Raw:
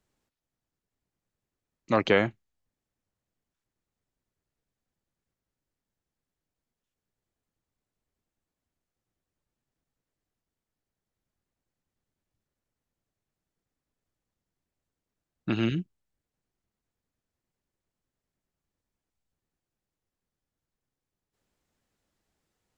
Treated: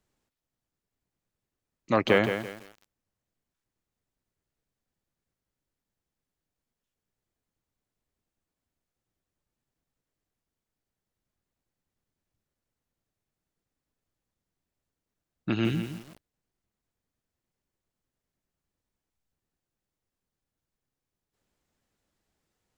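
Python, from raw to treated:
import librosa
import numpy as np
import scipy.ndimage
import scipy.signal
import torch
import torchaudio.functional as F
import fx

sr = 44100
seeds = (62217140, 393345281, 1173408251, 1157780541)

y = fx.echo_crushed(x, sr, ms=168, feedback_pct=35, bits=7, wet_db=-8)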